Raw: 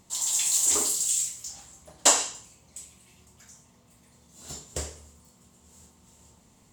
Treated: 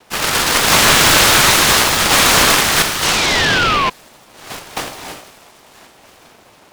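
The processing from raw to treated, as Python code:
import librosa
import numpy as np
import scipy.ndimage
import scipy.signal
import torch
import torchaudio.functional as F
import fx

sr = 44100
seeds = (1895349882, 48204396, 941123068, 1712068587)

y = fx.crossing_spikes(x, sr, level_db=-14.0, at=(0.71, 2.82))
y = fx.noise_vocoder(y, sr, seeds[0], bands=2)
y = fx.echo_wet_highpass(y, sr, ms=79, feedback_pct=83, hz=3100.0, wet_db=-14.5)
y = fx.rev_gated(y, sr, seeds[1], gate_ms=350, shape='rising', drr_db=5.0)
y = fx.over_compress(y, sr, threshold_db=-19.0, ratio=-0.5)
y = fx.fold_sine(y, sr, drive_db=13, ceiling_db=-1.0)
y = fx.spec_paint(y, sr, seeds[2], shape='fall', start_s=3.02, length_s=0.88, low_hz=1000.0, high_hz=3000.0, level_db=-13.0)
y = fx.peak_eq(y, sr, hz=1500.0, db=9.5, octaves=2.7)
y = fx.noise_mod_delay(y, sr, seeds[3], noise_hz=1400.0, depth_ms=0.1)
y = y * 10.0 ** (-10.0 / 20.0)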